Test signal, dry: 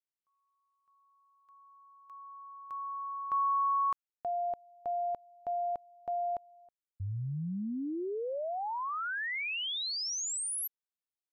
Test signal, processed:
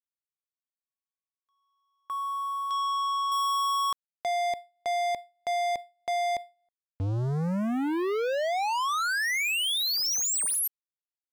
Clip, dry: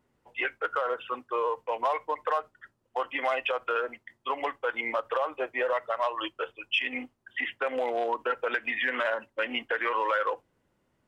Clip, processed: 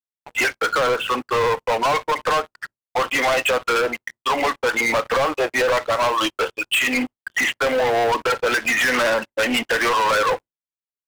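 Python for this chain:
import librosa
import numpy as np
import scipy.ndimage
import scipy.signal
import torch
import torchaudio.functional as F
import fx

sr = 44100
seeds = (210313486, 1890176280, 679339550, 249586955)

y = fx.leveller(x, sr, passes=5)
y = fx.gate_hold(y, sr, open_db=-30.0, close_db=-34.0, hold_ms=28.0, range_db=-33, attack_ms=0.64, release_ms=147.0)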